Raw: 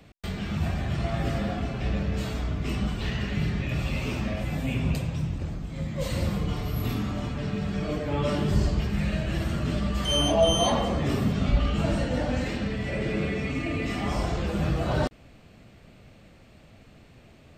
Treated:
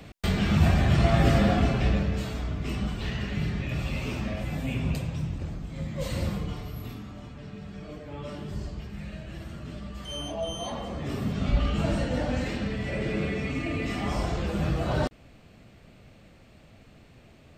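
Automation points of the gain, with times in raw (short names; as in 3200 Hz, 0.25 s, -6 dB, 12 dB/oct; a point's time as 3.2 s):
1.69 s +7 dB
2.26 s -2 dB
6.28 s -2 dB
7.01 s -11.5 dB
10.62 s -11.5 dB
11.58 s -1 dB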